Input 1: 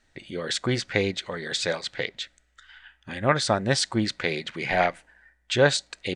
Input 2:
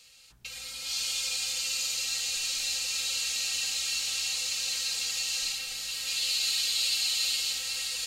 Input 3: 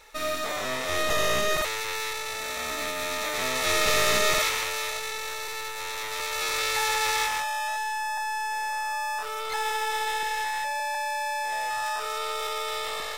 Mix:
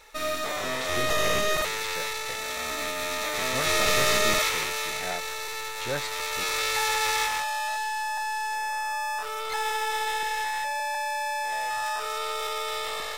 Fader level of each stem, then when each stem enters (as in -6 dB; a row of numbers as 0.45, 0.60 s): -12.5, -18.5, 0.0 dB; 0.30, 0.50, 0.00 s